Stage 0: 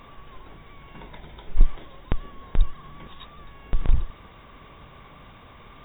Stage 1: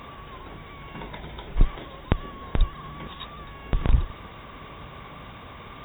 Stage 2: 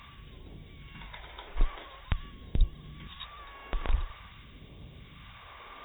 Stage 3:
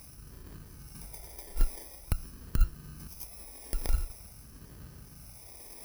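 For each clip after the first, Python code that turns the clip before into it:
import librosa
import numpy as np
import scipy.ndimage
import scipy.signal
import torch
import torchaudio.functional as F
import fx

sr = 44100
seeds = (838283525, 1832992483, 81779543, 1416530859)

y1 = scipy.signal.sosfilt(scipy.signal.butter(2, 43.0, 'highpass', fs=sr, output='sos'), x)
y1 = y1 * librosa.db_to_amplitude(6.0)
y2 = fx.phaser_stages(y1, sr, stages=2, low_hz=120.0, high_hz=1200.0, hz=0.47, feedback_pct=40)
y2 = y2 * librosa.db_to_amplitude(-5.5)
y3 = fx.bit_reversed(y2, sr, seeds[0], block=32)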